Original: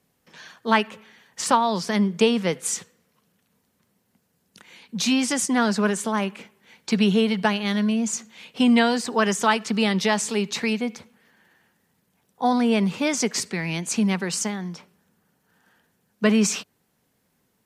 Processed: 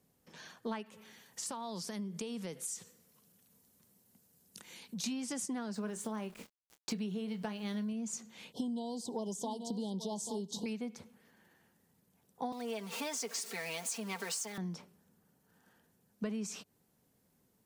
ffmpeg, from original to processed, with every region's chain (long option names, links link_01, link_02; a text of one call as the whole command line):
ffmpeg -i in.wav -filter_complex "[0:a]asettb=1/sr,asplit=3[link_01][link_02][link_03];[link_01]atrim=end=0.864[link_04];[link_02]atrim=start=0.86:end=5.04,asetpts=PTS-STARTPTS,afade=type=in:duration=0.004:curve=qsin,afade=type=out:start_time=4.176:duration=0.004:curve=qsin,highshelf=frequency=4000:gain=10,acompressor=threshold=-39dB:ratio=2.5:attack=3.2:release=140:knee=1:detection=peak[link_05];[link_03]atrim=start=5.036[link_06];[link_04][link_05]acrossfade=duration=0.004:curve1=hsin:curve2=qsin[link_07];[link_07][link_06]acrossfade=duration=0.004:curve1=qsin:curve2=hsin,asettb=1/sr,asplit=3[link_08][link_09][link_10];[link_08]atrim=end=5.744[link_11];[link_09]atrim=start=5.74:end=7.93,asetpts=PTS-STARTPTS,afade=type=in:duration=0.004:curve=qsin,afade=type=out:start_time=2.186:duration=0.004:curve=qsin,aeval=exprs='val(0)*gte(abs(val(0)),0.00794)':channel_layout=same,asplit=2[link_12][link_13];[link_13]adelay=28,volume=-12.5dB[link_14];[link_12][link_14]amix=inputs=2:normalize=0,atrim=end_sample=96579[link_15];[link_10]atrim=start=7.926[link_16];[link_11][link_15]acrossfade=duration=0.004:curve1=hsin:curve2=qsin[link_17];[link_17][link_16]acrossfade=duration=0.004:curve1=qsin:curve2=hsin,asettb=1/sr,asplit=3[link_18][link_19][link_20];[link_18]atrim=end=8.524[link_21];[link_19]atrim=start=8.52:end=10.66,asetpts=PTS-STARTPTS,afade=type=in:duration=0.004:curve=qsin,afade=type=out:start_time=2.136:duration=0.004:curve=qsin,asuperstop=centerf=1800:order=20:qfactor=0.87,aecho=1:1:836:0.211,atrim=end_sample=94374[link_22];[link_20]atrim=start=10.656[link_23];[link_21][link_22]acrossfade=duration=0.004:curve1=hsin:curve2=qsin[link_24];[link_24][link_23]acrossfade=duration=0.004:curve1=qsin:curve2=hsin,asettb=1/sr,asplit=3[link_25][link_26][link_27];[link_25]atrim=end=12.524[link_28];[link_26]atrim=start=12.52:end=14.58,asetpts=PTS-STARTPTS,afade=type=in:duration=0.004:curve=qsin,afade=type=out:start_time=2.056:duration=0.004:curve=qsin,aeval=exprs='val(0)+0.5*0.0299*sgn(val(0))':channel_layout=same,highpass=570,aecho=1:1:4.4:0.72,atrim=end_sample=90846[link_29];[link_27]atrim=start=14.576[link_30];[link_28][link_29]acrossfade=duration=0.004:curve1=hsin:curve2=qsin[link_31];[link_31][link_30]acrossfade=duration=0.004:curve1=qsin:curve2=hsin,equalizer=frequency=2100:width_type=o:width=2.6:gain=-7,acompressor=threshold=-33dB:ratio=10,volume=-2.5dB" out.wav